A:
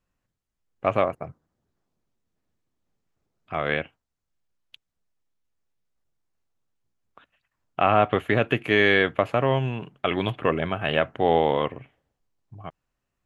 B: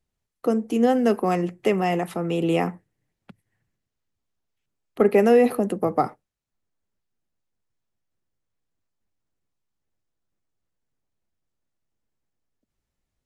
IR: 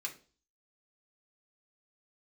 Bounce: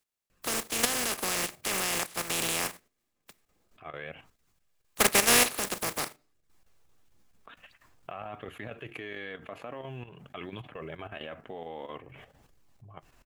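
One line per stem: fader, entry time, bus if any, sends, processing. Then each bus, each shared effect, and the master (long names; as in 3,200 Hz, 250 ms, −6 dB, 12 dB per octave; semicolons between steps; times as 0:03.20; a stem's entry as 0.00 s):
−14.5 dB, 0.30 s, send −15 dB, flanger 0.49 Hz, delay 0.4 ms, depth 4.3 ms, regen −48%; square-wave tremolo 4.4 Hz, depth 65%, duty 85%; envelope flattener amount 70%; automatic ducking −18 dB, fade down 0.70 s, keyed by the second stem
−4.5 dB, 0.00 s, send −12 dB, compressing power law on the bin magnitudes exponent 0.22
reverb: on, RT60 0.40 s, pre-delay 3 ms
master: parametric band 65 Hz −2 dB 2.1 octaves; output level in coarse steps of 10 dB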